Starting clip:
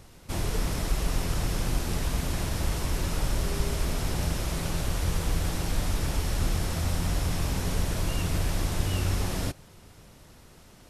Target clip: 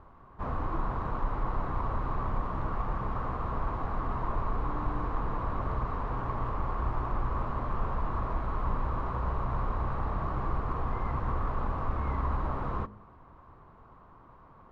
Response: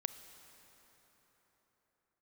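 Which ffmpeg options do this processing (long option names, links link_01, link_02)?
-filter_complex "[0:a]lowpass=frequency=1500:width_type=q:width=5.6,bandreject=frequency=69.43:width_type=h:width=4,bandreject=frequency=138.86:width_type=h:width=4,bandreject=frequency=208.29:width_type=h:width=4,bandreject=frequency=277.72:width_type=h:width=4,bandreject=frequency=347.15:width_type=h:width=4,bandreject=frequency=416.58:width_type=h:width=4,bandreject=frequency=486.01:width_type=h:width=4,bandreject=frequency=555.44:width_type=h:width=4,bandreject=frequency=624.87:width_type=h:width=4,bandreject=frequency=694.3:width_type=h:width=4,bandreject=frequency=763.73:width_type=h:width=4,asplit=2[link_01][link_02];[link_02]asoftclip=type=hard:threshold=-21dB,volume=-10dB[link_03];[link_01][link_03]amix=inputs=2:normalize=0,asetrate=32634,aresample=44100,volume=-6dB"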